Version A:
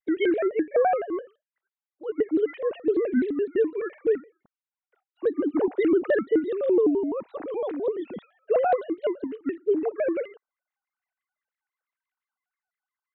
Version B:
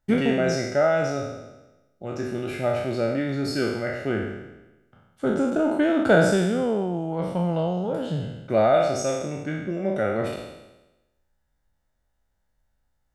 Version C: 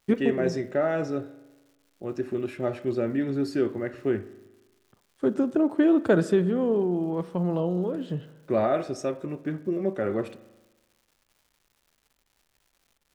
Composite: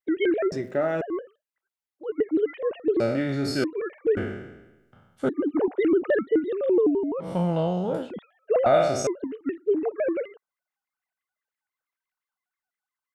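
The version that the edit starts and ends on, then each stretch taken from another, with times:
A
0.52–1.01 from C
3–3.64 from B
4.17–5.29 from B
7.26–8.04 from B, crossfade 0.16 s
8.66–9.07 from B

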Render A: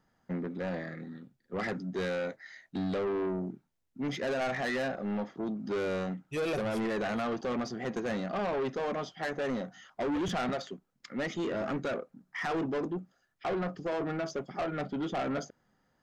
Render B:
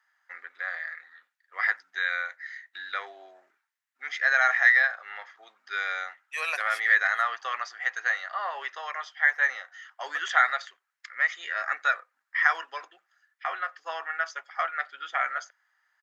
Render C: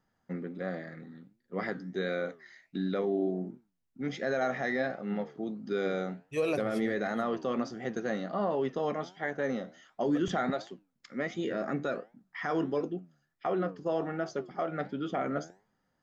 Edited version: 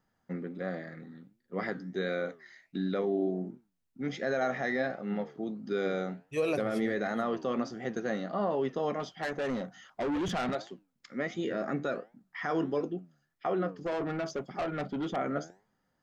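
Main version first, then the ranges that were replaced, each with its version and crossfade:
C
9–10.55 from A
13.81–15.16 from A
not used: B

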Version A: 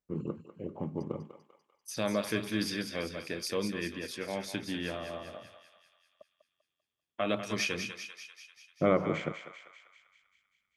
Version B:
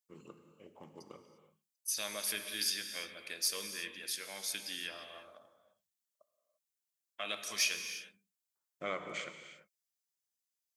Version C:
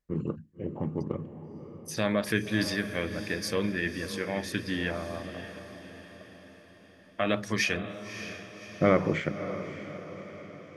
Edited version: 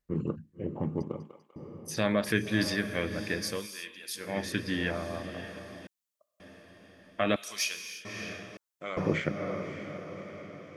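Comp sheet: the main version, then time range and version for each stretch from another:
C
1.02–1.56 from A
3.56–4.26 from B, crossfade 0.24 s
5.87–6.4 from B
7.36–8.05 from B
8.57–8.97 from B

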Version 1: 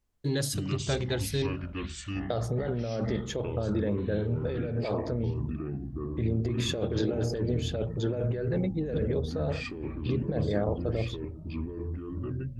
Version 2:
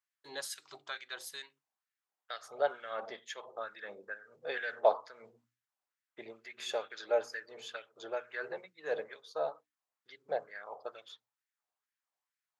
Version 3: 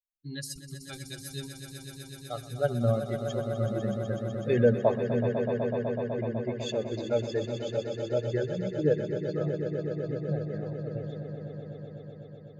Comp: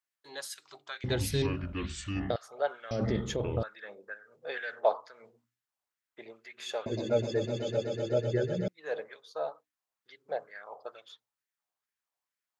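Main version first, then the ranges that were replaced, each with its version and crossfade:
2
1.04–2.36 from 1
2.91–3.63 from 1
6.86–8.68 from 3

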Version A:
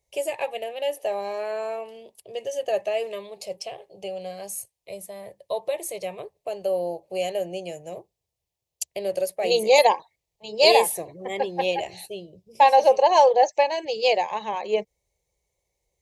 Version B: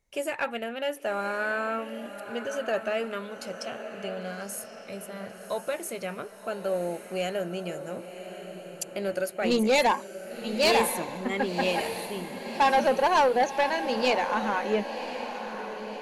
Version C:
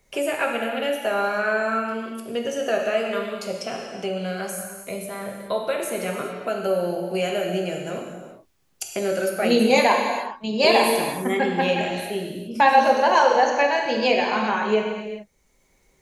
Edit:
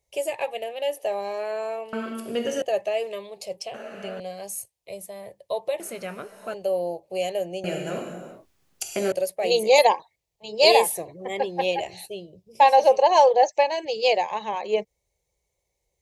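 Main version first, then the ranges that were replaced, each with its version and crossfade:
A
1.93–2.62 from C
3.74–4.2 from B
5.8–6.54 from B
7.64–9.12 from C

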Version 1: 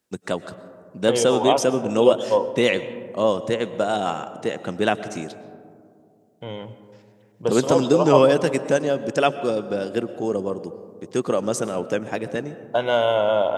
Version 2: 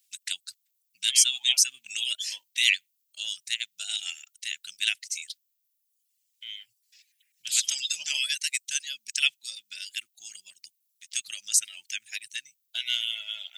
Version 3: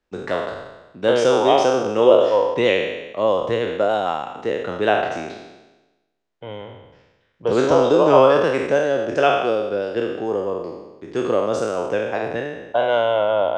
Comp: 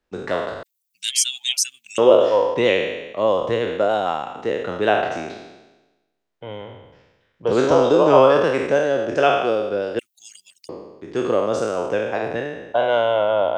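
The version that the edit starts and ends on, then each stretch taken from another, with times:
3
0.63–1.98 from 2
9.99–10.69 from 2
not used: 1

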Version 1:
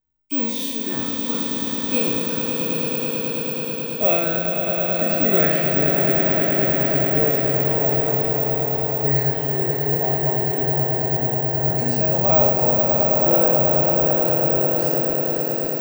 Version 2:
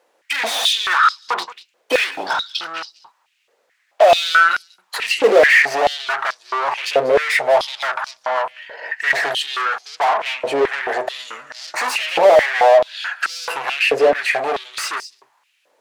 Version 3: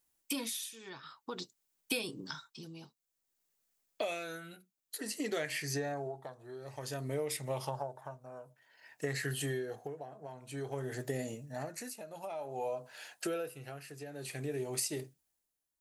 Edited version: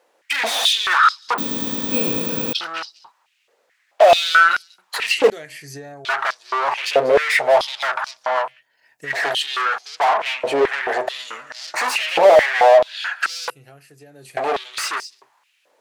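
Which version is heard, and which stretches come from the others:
2
1.38–2.53 from 1
5.3–6.05 from 3
8.51–9.14 from 3, crossfade 0.24 s
13.5–14.37 from 3

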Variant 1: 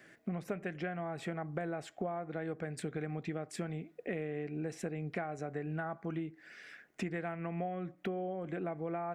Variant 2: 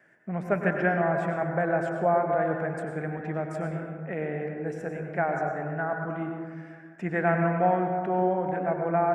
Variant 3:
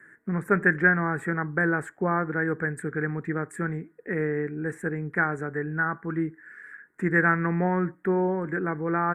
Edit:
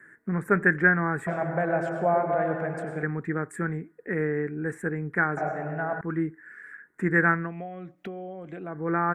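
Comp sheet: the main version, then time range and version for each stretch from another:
3
1.27–3.03 from 2
5.37–6.01 from 2
7.42–8.77 from 1, crossfade 0.24 s

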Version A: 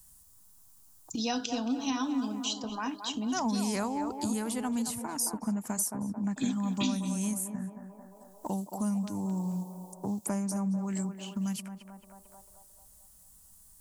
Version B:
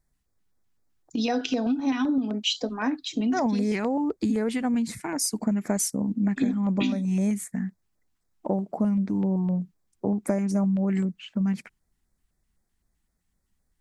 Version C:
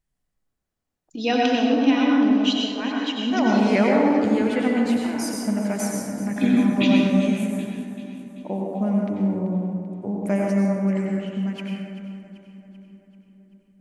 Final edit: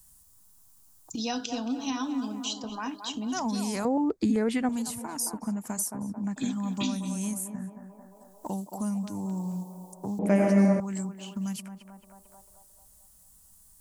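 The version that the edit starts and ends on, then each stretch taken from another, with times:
A
3.85–4.69 from B
10.19–10.8 from C

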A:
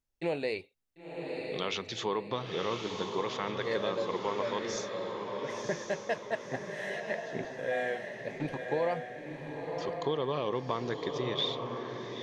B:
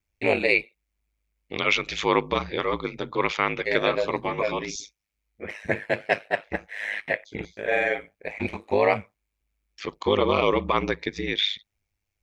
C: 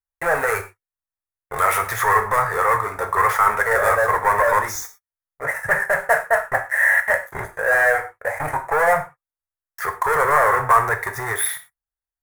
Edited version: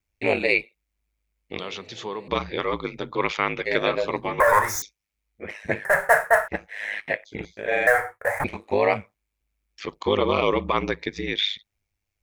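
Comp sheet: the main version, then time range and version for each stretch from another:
B
1.59–2.28 from A
4.4–4.82 from C
5.85–6.48 from C
7.87–8.44 from C

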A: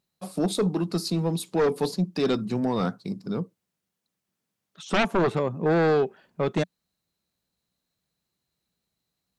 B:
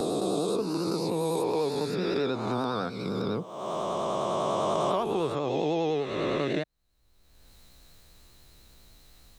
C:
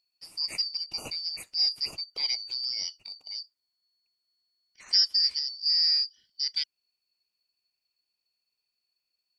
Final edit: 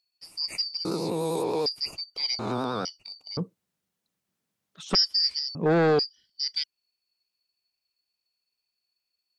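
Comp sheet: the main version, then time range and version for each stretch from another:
C
0.85–1.66 from B
2.39–2.85 from B
3.37–4.95 from A
5.55–5.99 from A

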